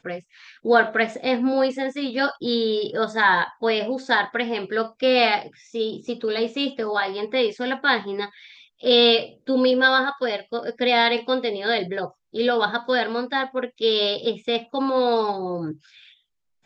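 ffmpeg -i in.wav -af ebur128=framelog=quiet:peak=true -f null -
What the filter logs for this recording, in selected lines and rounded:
Integrated loudness:
  I:         -22.1 LUFS
  Threshold: -32.4 LUFS
Loudness range:
  LRA:         3.8 LU
  Threshold: -42.2 LUFS
  LRA low:   -23.9 LUFS
  LRA high:  -20.1 LUFS
True peak:
  Peak:       -5.4 dBFS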